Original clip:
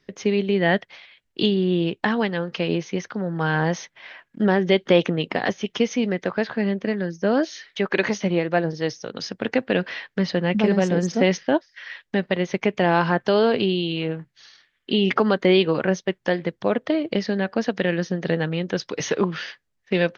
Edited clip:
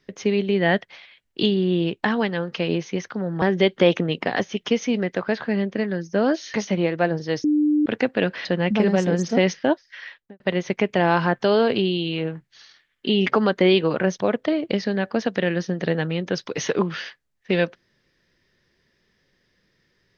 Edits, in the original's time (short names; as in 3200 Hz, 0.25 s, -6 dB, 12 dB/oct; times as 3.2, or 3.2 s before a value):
3.42–4.51 cut
7.63–8.07 cut
8.97–9.39 bleep 299 Hz -15.5 dBFS
9.98–10.29 cut
11.84–12.24 studio fade out
16.02–16.6 cut